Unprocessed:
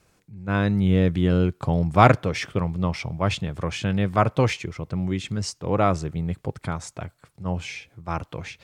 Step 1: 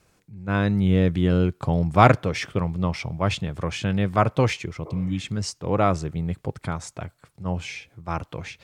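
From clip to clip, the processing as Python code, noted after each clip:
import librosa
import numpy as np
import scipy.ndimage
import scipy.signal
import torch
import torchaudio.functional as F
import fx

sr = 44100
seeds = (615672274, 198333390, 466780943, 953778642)

y = fx.spec_repair(x, sr, seeds[0], start_s=4.88, length_s=0.35, low_hz=320.0, high_hz=2300.0, source='both')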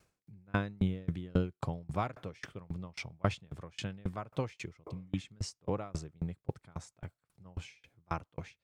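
y = fx.tremolo_decay(x, sr, direction='decaying', hz=3.7, depth_db=33)
y = F.gain(torch.from_numpy(y), -4.0).numpy()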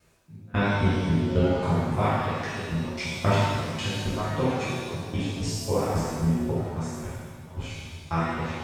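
y = fx.rev_shimmer(x, sr, seeds[1], rt60_s=1.5, semitones=7, shimmer_db=-8, drr_db=-11.5)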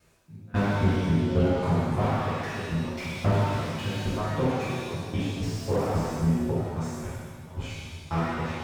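y = fx.slew_limit(x, sr, full_power_hz=41.0)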